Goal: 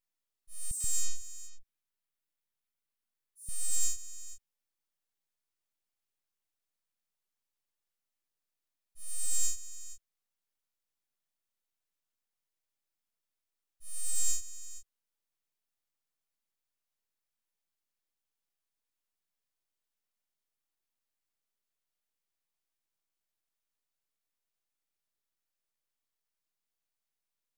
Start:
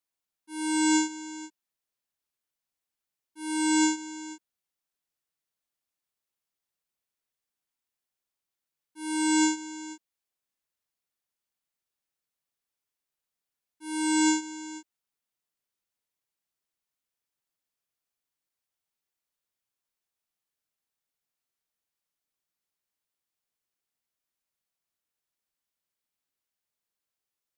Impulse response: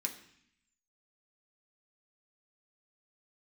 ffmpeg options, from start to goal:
-filter_complex "[0:a]aeval=exprs='abs(val(0))':c=same,asettb=1/sr,asplit=3[s0][s1][s2];[s0]atrim=end=0.714[s3];[s1]atrim=start=0.71:end=3.49,asetpts=PTS-STARTPTS,afade=t=in:d=0.004:c=qsin,afade=t=out:st=2.776:d=0.004:c=qsin,acrossover=split=640|5900[s4][s5][s6];[s5]adelay=90[s7];[s4]adelay=130[s8];[s8][s7][s6]amix=inputs=3:normalize=0,atrim=end_sample=122598[s9];[s2]atrim=start=3.486[s10];[s3][s9]acrossfade=d=0.004:c1=hsin:c2=qsin[s11];[s11][s10]acrossfade=d=0.004:c1=qsin:c2=hsin"

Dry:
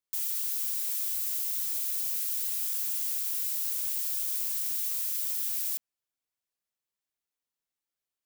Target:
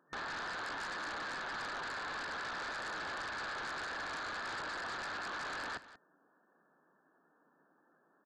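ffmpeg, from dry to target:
-filter_complex "[0:a]equalizer=f=300:w=2.1:g=5.5,afftfilt=real='re*between(b*sr/4096,150,1800)':imag='im*between(b*sr/4096,150,1800)':win_size=4096:overlap=0.75,asplit=2[s0][s1];[s1]aeval=exprs='0.00335*sin(PI/2*5.62*val(0)/0.00335)':c=same,volume=0.335[s2];[s0][s2]amix=inputs=2:normalize=0,aecho=1:1:184:0.168,volume=7.08"

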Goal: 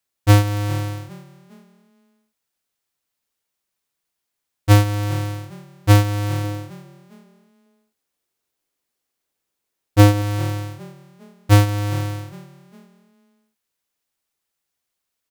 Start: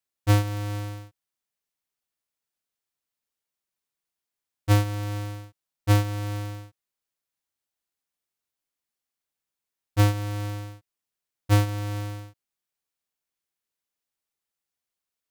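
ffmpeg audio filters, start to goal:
-filter_complex "[0:a]asettb=1/sr,asplit=3[s0][s1][s2];[s0]atrim=end=6.444[s3];[s1]atrim=start=6.44:end=10.22,asetpts=PTS-STARTPTS,afade=t=in:d=0.004:c=qsin,afade=t=out:st=3.776:d=0.004:c=qsin,equalizer=f=390:t=o:w=1.3:g=6[s4];[s2]atrim=start=10.216[s5];[s3][s4]acrossfade=d=0.004:c1=hsin:c2=qsin[s6];[s6][s5]acrossfade=d=0.004:c1=qsin:c2=hsin,asplit=4[s7][s8][s9][s10];[s8]adelay=406,afreqshift=39,volume=0.0891[s11];[s9]adelay=812,afreqshift=78,volume=0.0355[s12];[s10]adelay=1218,afreqshift=117,volume=0.0143[s13];[s7][s11][s12][s13]amix=inputs=4:normalize=0,volume=2.37"

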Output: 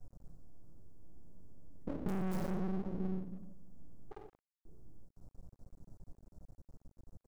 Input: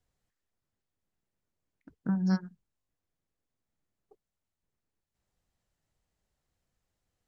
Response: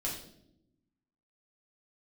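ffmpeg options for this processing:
-filter_complex "[0:a]acontrast=46,aeval=exprs='(mod(6.31*val(0)+1,2)-1)/6.31':c=same,asuperstop=centerf=2500:order=4:qfactor=0.61,asplit=2[s0][s1];[s1]adelay=173,lowpass=f=4200:p=1,volume=0.112,asplit=2[s2][s3];[s3]adelay=173,lowpass=f=4200:p=1,volume=0.41,asplit=2[s4][s5];[s5]adelay=173,lowpass=f=4200:p=1,volume=0.41[s6];[s0][s2][s4][s6]amix=inputs=4:normalize=0[s7];[1:a]atrim=start_sample=2205[s8];[s7][s8]afir=irnorm=-1:irlink=0,aeval=exprs='(tanh(50.1*val(0)+0.2)-tanh(0.2))/50.1':c=same,acompressor=threshold=0.00562:ratio=6,tiltshelf=f=760:g=8,aeval=exprs='max(val(0),0)':c=same,volume=2.99"

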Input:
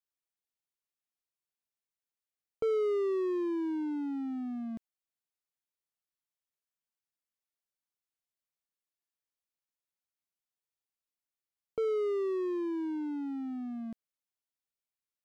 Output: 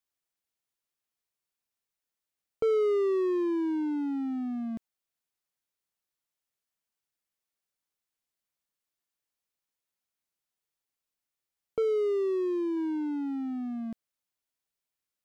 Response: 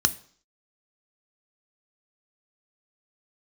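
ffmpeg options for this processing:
-filter_complex "[0:a]asettb=1/sr,asplit=3[s0][s1][s2];[s0]atrim=end=11.824[s3];[s1]atrim=start=11.82:end=12.77,asetpts=PTS-STARTPTS,afade=t=in:d=0.004:c=qsin,afade=t=out:st=0.946:d=0.004:c=qsin,equalizer=f=1400:t=o:w=1:g=-7[s4];[s2]atrim=start=12.766[s5];[s3][s4]acrossfade=d=0.004:c1=hsin:c2=qsin[s6];[s6][s5]acrossfade=d=0.004:c1=qsin:c2=hsin,volume=1.58"

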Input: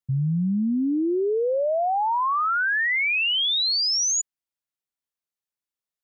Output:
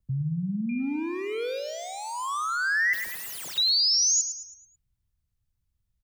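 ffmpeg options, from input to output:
-filter_complex "[0:a]acrossover=split=100|410|1300[s0][s1][s2][s3];[s0]acompressor=mode=upward:threshold=0.00562:ratio=2.5[s4];[s1]alimiter=level_in=1.78:limit=0.0631:level=0:latency=1,volume=0.562[s5];[s2]aeval=exprs='0.0126*(abs(mod(val(0)/0.0126+3,4)-2)-1)':c=same[s6];[s4][s5][s6][s3]amix=inputs=4:normalize=0,asettb=1/sr,asplit=3[s7][s8][s9];[s7]atrim=end=0.694[s10];[s8]atrim=start=0.69:end=1.59,asetpts=PTS-STARTPTS,afade=t=in:d=0.004:c=qsin,afade=t=out:st=0.896:d=0.004:c=qsin,aeval=exprs='val(0)+0.01*sin(2*PI*2400*n/s)':c=same[s11];[s9]atrim=start=1.586[s12];[s10][s11]acrossfade=d=0.004:c1=hsin:c2=qsin[s13];[s13][s12]acrossfade=d=0.004:c1=qsin:c2=hsin,asettb=1/sr,asplit=3[s14][s15][s16];[s14]atrim=end=2.934[s17];[s15]atrim=start=2.93:end=3.58,asetpts=PTS-STARTPTS,afade=t=in:d=0.004:c=qsin,afade=t=out:st=0.646:d=0.004:c=qsin,aeval=exprs='(mod(39.8*val(0)+1,2)-1)/39.8':c=same[s18];[s16]atrim=start=3.576[s19];[s17][s18]acrossfade=d=0.004:c1=hsin:c2=qsin[s20];[s20][s19]acrossfade=d=0.004:c1=qsin:c2=hsin,aecho=1:1:109|218|327|436|545:0.335|0.144|0.0619|0.0266|0.0115"

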